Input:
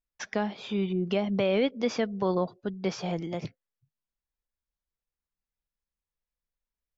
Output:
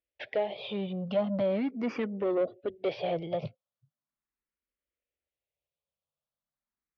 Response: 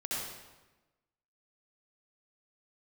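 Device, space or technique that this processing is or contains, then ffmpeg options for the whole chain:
barber-pole phaser into a guitar amplifier: -filter_complex "[0:a]asplit=2[link_01][link_02];[link_02]afreqshift=0.39[link_03];[link_01][link_03]amix=inputs=2:normalize=1,asoftclip=type=tanh:threshold=-30dB,highpass=88,equalizer=frequency=180:width_type=q:width=4:gain=-5,equalizer=frequency=580:width_type=q:width=4:gain=8,equalizer=frequency=930:width_type=q:width=4:gain=-5,equalizer=frequency=1600:width_type=q:width=4:gain=-5,lowpass=frequency=3500:width=0.5412,lowpass=frequency=3500:width=1.3066,volume=4.5dB"

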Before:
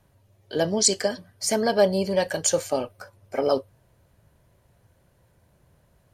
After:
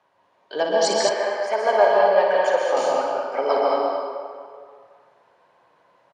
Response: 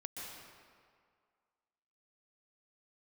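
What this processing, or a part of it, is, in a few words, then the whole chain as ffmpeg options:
station announcement: -filter_complex "[0:a]highpass=490,lowpass=3800,equalizer=frequency=1000:width_type=o:width=0.59:gain=7.5,aecho=1:1:58.31|215.7:0.447|0.447[link_01];[1:a]atrim=start_sample=2205[link_02];[link_01][link_02]afir=irnorm=-1:irlink=0,asettb=1/sr,asplit=3[link_03][link_04][link_05];[link_03]atrim=end=1.094[link_06];[link_04]atrim=start=1.09:end=2.77,asetpts=PTS-STARTPTS,afade=type=in:duration=0.004:curve=qsin,afade=type=out:start_time=1.676:duration=0.004:curve=qsin,acrossover=split=300 3000:gain=0.141 1 0.224[link_07][link_08][link_09];[link_07][link_08][link_09]amix=inputs=3:normalize=0[link_10];[link_05]atrim=start=2.766[link_11];[link_06][link_10]acrossfade=duration=0.004:curve1=hsin:curve2=qsin[link_12];[link_12][link_11]acrossfade=duration=0.004:curve1=qsin:curve2=hsin,volume=7dB"

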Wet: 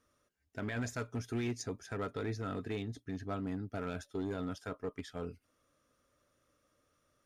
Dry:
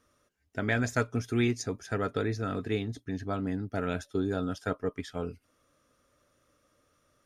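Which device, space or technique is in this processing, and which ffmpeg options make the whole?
limiter into clipper: -af "alimiter=limit=-21dB:level=0:latency=1:release=33,asoftclip=type=hard:threshold=-25dB,volume=-5.5dB"

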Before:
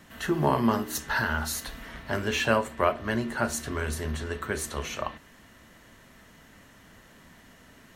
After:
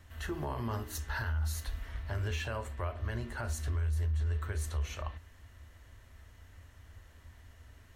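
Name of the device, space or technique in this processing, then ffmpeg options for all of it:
car stereo with a boomy subwoofer: -af "lowshelf=frequency=120:width_type=q:width=3:gain=12.5,alimiter=limit=-18dB:level=0:latency=1:release=83,volume=-8.5dB"

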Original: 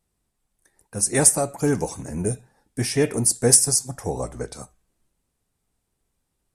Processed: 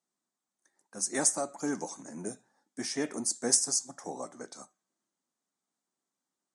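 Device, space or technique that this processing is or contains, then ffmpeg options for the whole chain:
television speaker: -af "highpass=frequency=220:width=0.5412,highpass=frequency=220:width=1.3066,equalizer=frequency=450:width_type=q:width=4:gain=-8,equalizer=frequency=1200:width_type=q:width=4:gain=3,equalizer=frequency=2600:width_type=q:width=4:gain=-8,equalizer=frequency=6500:width_type=q:width=4:gain=6,lowpass=frequency=8400:width=0.5412,lowpass=frequency=8400:width=1.3066,volume=-8dB"

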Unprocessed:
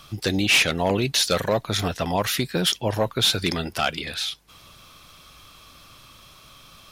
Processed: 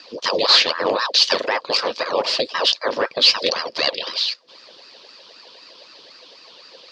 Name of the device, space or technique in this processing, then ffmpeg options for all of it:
voice changer toy: -af "aeval=exprs='val(0)*sin(2*PI*800*n/s+800*0.85/3.9*sin(2*PI*3.9*n/s))':channel_layout=same,highpass=420,equalizer=frequency=520:width_type=q:width=4:gain=9,equalizer=frequency=790:width_type=q:width=4:gain=-7,equalizer=frequency=1400:width_type=q:width=4:gain=-9,equalizer=frequency=2100:width_type=q:width=4:gain=-7,equalizer=frequency=4700:width_type=q:width=4:gain=10,lowpass=frequency=5000:width=0.5412,lowpass=frequency=5000:width=1.3066,volume=7dB"

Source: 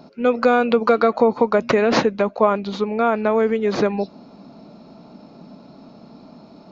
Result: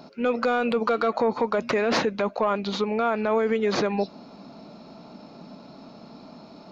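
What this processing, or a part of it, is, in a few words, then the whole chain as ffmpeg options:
soft clipper into limiter: -af "tiltshelf=frequency=680:gain=-3,asoftclip=type=tanh:threshold=-5.5dB,alimiter=limit=-14.5dB:level=0:latency=1:release=53"

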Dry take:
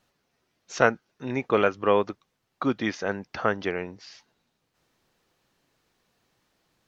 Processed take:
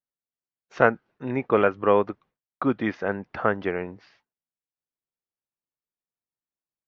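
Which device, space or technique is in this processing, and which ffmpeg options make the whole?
hearing-loss simulation: -af "lowpass=2100,agate=range=-33dB:threshold=-51dB:ratio=3:detection=peak,volume=2dB"

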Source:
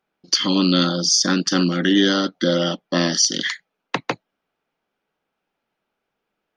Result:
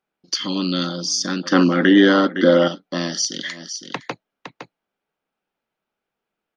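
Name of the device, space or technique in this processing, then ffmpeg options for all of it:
ducked delay: -filter_complex "[0:a]asplit=3[link_01][link_02][link_03];[link_02]adelay=511,volume=-8.5dB[link_04];[link_03]apad=whole_len=312262[link_05];[link_04][link_05]sidechaincompress=threshold=-35dB:ratio=6:attack=16:release=102[link_06];[link_01][link_06]amix=inputs=2:normalize=0,asettb=1/sr,asplit=3[link_07][link_08][link_09];[link_07]atrim=end=1.434[link_10];[link_08]atrim=start=1.43:end=2.68,asetpts=PTS-STARTPTS,afade=type=in:duration=0.004:curve=qsin,afade=type=out:start_time=1.246:duration=0.004:curve=qsin,equalizer=frequency=250:width_type=o:width=1:gain=8,equalizer=frequency=500:width_type=o:width=1:gain=8,equalizer=frequency=1000:width_type=o:width=1:gain=11,equalizer=frequency=2000:width_type=o:width=1:gain=8,equalizer=frequency=8000:width_type=o:width=1:gain=-10[link_11];[link_09]atrim=start=2.676[link_12];[link_10][link_11]acrossfade=duration=0.004:curve1=hsin:curve2=qsin[link_13];[link_13][link_12]acrossfade=duration=0.004:curve1=qsin:curve2=hsin,volume=-5dB"

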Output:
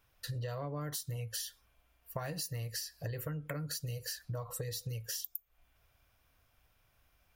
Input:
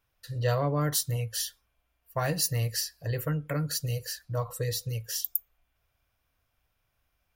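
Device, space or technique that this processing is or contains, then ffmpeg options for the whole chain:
serial compression, leveller first: -af "acompressor=threshold=-31dB:ratio=2.5,acompressor=threshold=-42dB:ratio=6,volume=5dB"

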